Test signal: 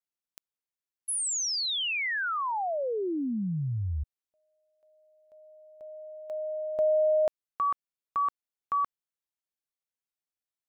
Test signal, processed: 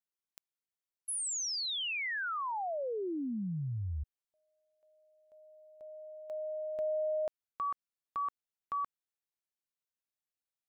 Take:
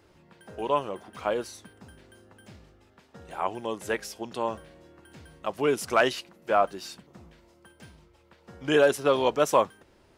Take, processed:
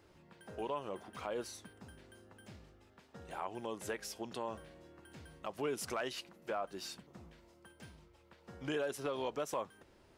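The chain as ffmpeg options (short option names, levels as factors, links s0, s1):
-af "acompressor=threshold=0.0501:ratio=6:attack=0.45:release=314:knee=6:detection=peak,volume=0.596"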